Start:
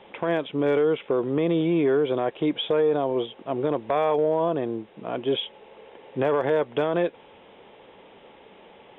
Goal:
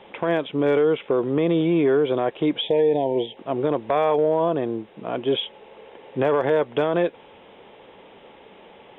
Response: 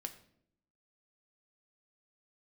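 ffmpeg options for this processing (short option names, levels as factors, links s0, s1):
-filter_complex "[0:a]asettb=1/sr,asplit=3[s0][s1][s2];[s0]atrim=end=2.614[s3];[s1]atrim=start=2.61:end=3.37,asetpts=PTS-STARTPTS,afade=t=in:d=0.004:c=qsin,afade=t=out:st=0.756:d=0.004:c=qsin,asuperstop=centerf=1300:order=12:qfactor=1.7[s4];[s2]atrim=start=3.366[s5];[s3][s4]acrossfade=d=0.004:c1=hsin:c2=qsin[s6];[s6][s5]acrossfade=d=0.004:c1=qsin:c2=hsin,volume=1.33"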